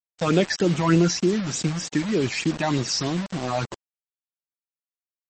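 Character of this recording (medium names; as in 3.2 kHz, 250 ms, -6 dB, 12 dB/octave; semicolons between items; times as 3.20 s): phasing stages 8, 3.3 Hz, lowest notch 370–1900 Hz; a quantiser's noise floor 6-bit, dither none; MP3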